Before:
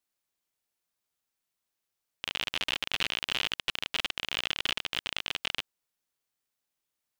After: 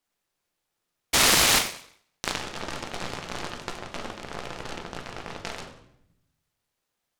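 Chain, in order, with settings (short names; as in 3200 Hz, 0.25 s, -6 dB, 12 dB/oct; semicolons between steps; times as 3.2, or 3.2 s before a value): treble ducked by the level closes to 1300 Hz, closed at -32 dBFS; 1.13–1.59 painted sound noise 1900–6300 Hz -25 dBFS; 3.69–5.4 high shelf 3500 Hz -11 dB; shoebox room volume 180 m³, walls mixed, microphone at 0.87 m; noise-modulated delay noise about 1400 Hz, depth 0.088 ms; gain +4 dB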